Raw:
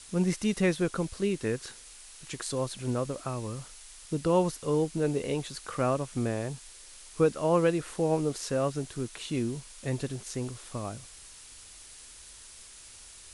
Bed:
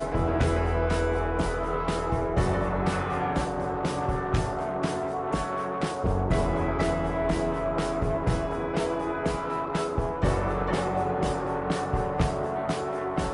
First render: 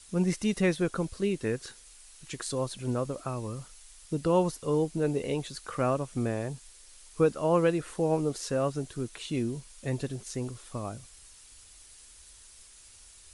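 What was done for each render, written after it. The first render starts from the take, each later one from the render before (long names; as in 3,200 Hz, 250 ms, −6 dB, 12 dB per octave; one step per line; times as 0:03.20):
broadband denoise 6 dB, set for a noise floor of −50 dBFS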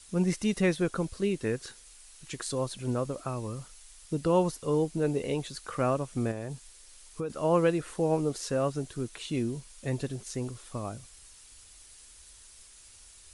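0:06.31–0:07.30: downward compressor 4 to 1, threshold −31 dBFS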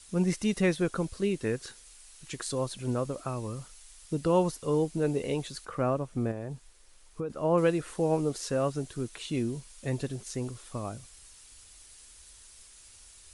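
0:05.65–0:07.58: high-shelf EQ 2,300 Hz −10 dB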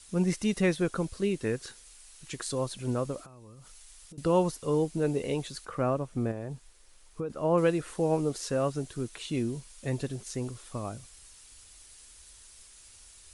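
0:03.24–0:04.18: downward compressor 20 to 1, threshold −46 dBFS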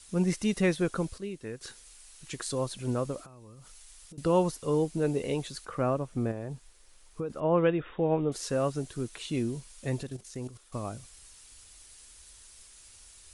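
0:01.18–0:01.61: clip gain −9 dB
0:07.40–0:08.32: linear-phase brick-wall low-pass 3,800 Hz
0:10.03–0:10.73: output level in coarse steps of 12 dB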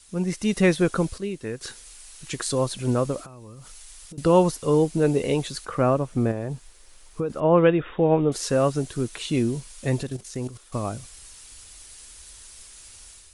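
automatic gain control gain up to 7.5 dB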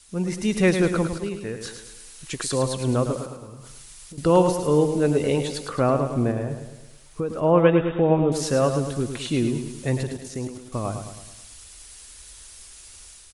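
repeating echo 107 ms, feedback 51%, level −8 dB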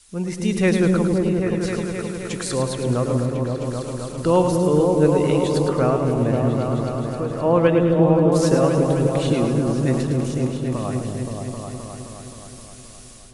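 echo whose low-pass opens from repeat to repeat 262 ms, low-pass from 400 Hz, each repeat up 1 octave, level 0 dB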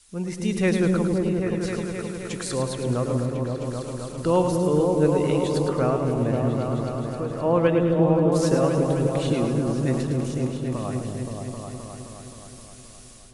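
level −3.5 dB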